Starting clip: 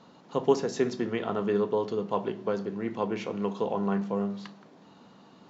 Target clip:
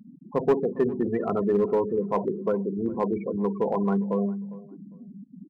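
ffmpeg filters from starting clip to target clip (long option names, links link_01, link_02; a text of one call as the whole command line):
ffmpeg -i in.wav -filter_complex "[0:a]aeval=exprs='val(0)+0.5*0.015*sgn(val(0))':channel_layout=same,lowpass=frequency=2700:poles=1,afftfilt=real='re*gte(hypot(re,im),0.0562)':imag='im*gte(hypot(re,im),0.0562)':win_size=1024:overlap=0.75,asplit=2[link_01][link_02];[link_02]aeval=exprs='0.0944*(abs(mod(val(0)/0.0944+3,4)-2)-1)':channel_layout=same,volume=-7dB[link_03];[link_01][link_03]amix=inputs=2:normalize=0,asplit=2[link_04][link_05];[link_05]adelay=404,lowpass=frequency=1700:poles=1,volume=-19dB,asplit=2[link_06][link_07];[link_07]adelay=404,lowpass=frequency=1700:poles=1,volume=0.23[link_08];[link_04][link_06][link_08]amix=inputs=3:normalize=0" out.wav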